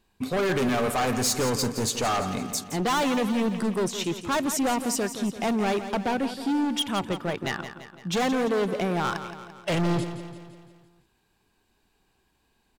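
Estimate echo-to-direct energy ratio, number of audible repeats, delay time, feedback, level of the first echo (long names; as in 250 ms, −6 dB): −9.5 dB, 5, 170 ms, 54%, −11.0 dB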